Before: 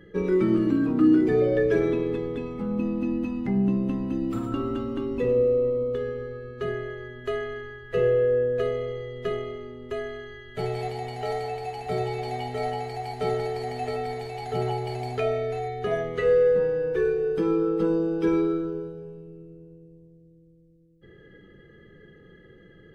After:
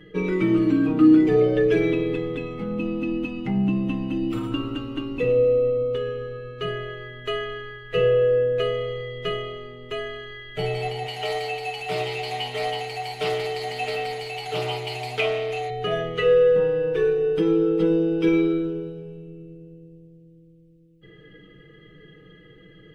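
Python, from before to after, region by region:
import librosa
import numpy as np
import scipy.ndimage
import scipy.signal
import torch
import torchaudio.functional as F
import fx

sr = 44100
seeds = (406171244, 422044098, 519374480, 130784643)

y = fx.chain(x, sr, fx.tilt_eq(slope=2.0),
    fx.doppler_dist(depth_ms=0.18), at=(11.06, 15.7))
y = fx.peak_eq(y, sr, hz=2800.0, db=10.0, octaves=0.78)
y = fx.notch(y, sr, hz=1700.0, q=26.0)
y = y + 0.69 * np.pad(y, (int(6.5 * sr / 1000.0), 0))[:len(y)]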